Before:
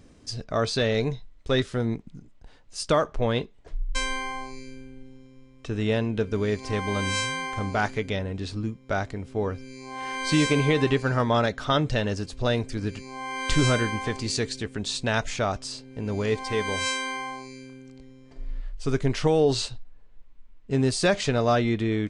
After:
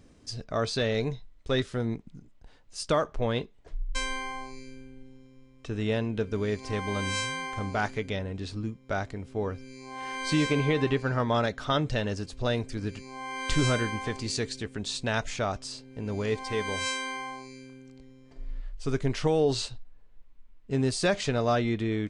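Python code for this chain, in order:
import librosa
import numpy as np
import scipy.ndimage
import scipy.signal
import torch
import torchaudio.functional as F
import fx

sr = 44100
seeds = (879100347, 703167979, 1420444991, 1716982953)

y = fx.high_shelf(x, sr, hz=7500.0, db=-10.5, at=(10.33, 11.29))
y = y * 10.0 ** (-3.5 / 20.0)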